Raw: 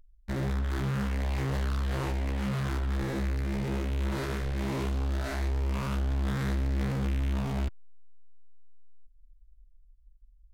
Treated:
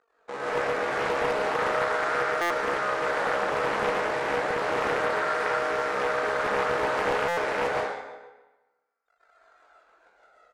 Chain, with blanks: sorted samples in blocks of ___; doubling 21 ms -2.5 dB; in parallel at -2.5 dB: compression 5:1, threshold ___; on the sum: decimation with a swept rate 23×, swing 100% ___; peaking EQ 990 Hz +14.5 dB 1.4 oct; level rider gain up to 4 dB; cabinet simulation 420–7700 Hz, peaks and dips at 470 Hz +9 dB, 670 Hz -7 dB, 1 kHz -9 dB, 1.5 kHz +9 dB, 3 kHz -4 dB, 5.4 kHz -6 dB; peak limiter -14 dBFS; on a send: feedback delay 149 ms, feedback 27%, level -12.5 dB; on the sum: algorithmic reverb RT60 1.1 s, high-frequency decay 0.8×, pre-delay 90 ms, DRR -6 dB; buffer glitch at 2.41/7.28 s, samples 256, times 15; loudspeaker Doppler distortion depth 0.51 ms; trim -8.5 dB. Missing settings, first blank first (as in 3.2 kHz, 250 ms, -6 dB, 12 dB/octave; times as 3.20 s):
64 samples, -46 dBFS, 0.31 Hz